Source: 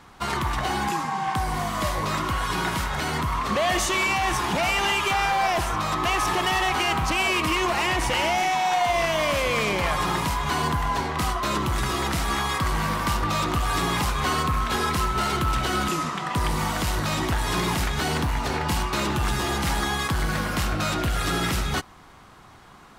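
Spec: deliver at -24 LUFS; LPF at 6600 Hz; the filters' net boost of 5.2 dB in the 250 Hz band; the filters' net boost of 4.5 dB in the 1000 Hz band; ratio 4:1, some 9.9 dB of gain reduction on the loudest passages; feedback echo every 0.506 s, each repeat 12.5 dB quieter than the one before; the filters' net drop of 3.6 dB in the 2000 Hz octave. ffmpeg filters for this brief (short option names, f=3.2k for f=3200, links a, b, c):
-af "lowpass=6.6k,equalizer=f=250:t=o:g=7,equalizer=f=1k:t=o:g=7,equalizer=f=2k:t=o:g=-7,acompressor=threshold=-29dB:ratio=4,aecho=1:1:506|1012|1518:0.237|0.0569|0.0137,volume=6.5dB"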